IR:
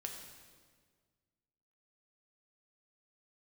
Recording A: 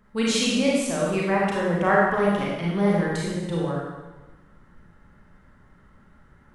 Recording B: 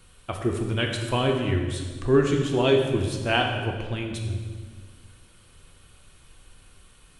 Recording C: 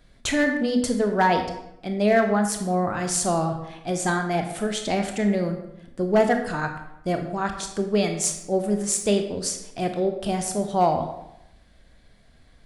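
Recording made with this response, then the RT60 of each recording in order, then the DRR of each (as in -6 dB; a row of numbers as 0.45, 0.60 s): B; 1.2, 1.7, 0.85 s; -5.0, 1.5, 5.0 dB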